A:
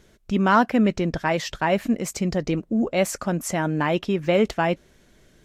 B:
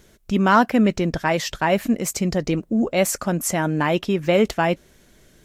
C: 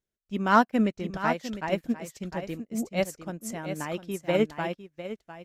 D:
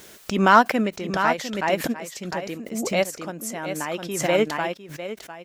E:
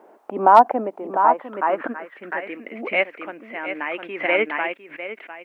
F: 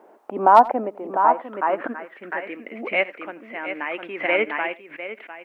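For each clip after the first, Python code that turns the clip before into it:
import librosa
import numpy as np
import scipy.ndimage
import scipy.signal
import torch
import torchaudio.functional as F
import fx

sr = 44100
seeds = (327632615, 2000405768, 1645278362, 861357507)

y1 = fx.high_shelf(x, sr, hz=8900.0, db=10.0)
y1 = y1 * 10.0 ** (2.0 / 20.0)
y2 = y1 + 10.0 ** (-5.0 / 20.0) * np.pad(y1, (int(703 * sr / 1000.0), 0))[:len(y1)]
y2 = fx.upward_expand(y2, sr, threshold_db=-35.0, expansion=2.5)
y2 = y2 * 10.0 ** (-3.0 / 20.0)
y3 = fx.highpass(y2, sr, hz=390.0, slope=6)
y3 = fx.pre_swell(y3, sr, db_per_s=54.0)
y3 = y3 * 10.0 ** (6.0 / 20.0)
y4 = fx.filter_sweep_lowpass(y3, sr, from_hz=830.0, to_hz=2200.0, start_s=1.05, end_s=2.65, q=3.3)
y4 = scipy.signal.sosfilt(scipy.signal.ellip(3, 1.0, 70, [270.0, 2900.0], 'bandpass', fs=sr, output='sos'), y4)
y4 = fx.quant_dither(y4, sr, seeds[0], bits=12, dither='none')
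y4 = y4 * 10.0 ** (-1.0 / 20.0)
y5 = y4 + 10.0 ** (-20.5 / 20.0) * np.pad(y4, (int(85 * sr / 1000.0), 0))[:len(y4)]
y5 = y5 * 10.0 ** (-1.0 / 20.0)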